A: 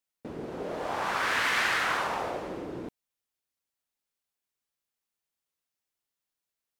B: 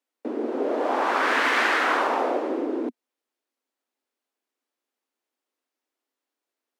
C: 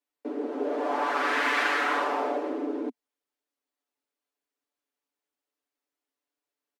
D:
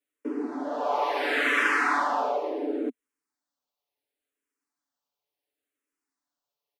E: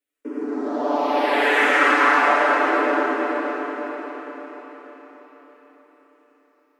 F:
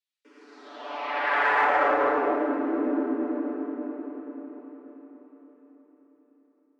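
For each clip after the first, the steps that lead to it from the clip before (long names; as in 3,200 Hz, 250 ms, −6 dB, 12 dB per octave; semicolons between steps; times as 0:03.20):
Butterworth high-pass 240 Hz 72 dB per octave; spectral tilt −3 dB per octave; level +7 dB
comb filter 6.9 ms, depth 98%; level −7 dB
frequency shifter mixed with the dry sound −0.71 Hz; level +3.5 dB
feedback delay with all-pass diffusion 540 ms, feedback 44%, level −7 dB; comb and all-pass reverb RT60 4.1 s, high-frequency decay 0.6×, pre-delay 35 ms, DRR −6 dB
band-pass filter sweep 4,200 Hz → 240 Hz, 0:00.55–0:02.61; in parallel at −7 dB: soft clipping −23 dBFS, distortion −14 dB; on the sum: level +1 dB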